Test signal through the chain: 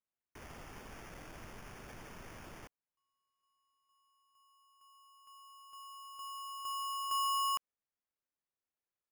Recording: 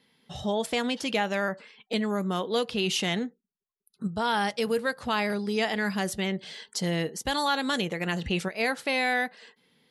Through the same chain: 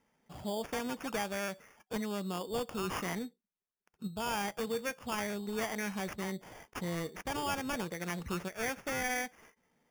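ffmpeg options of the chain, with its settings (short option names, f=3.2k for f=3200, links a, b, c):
-af "acrusher=samples=11:mix=1:aa=0.000001,volume=-8.5dB"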